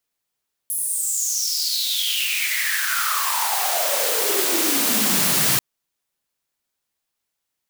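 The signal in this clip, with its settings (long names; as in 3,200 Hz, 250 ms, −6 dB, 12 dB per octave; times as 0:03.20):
filter sweep on noise white, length 4.89 s highpass, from 11,000 Hz, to 130 Hz, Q 7.4, exponential, gain ramp +12 dB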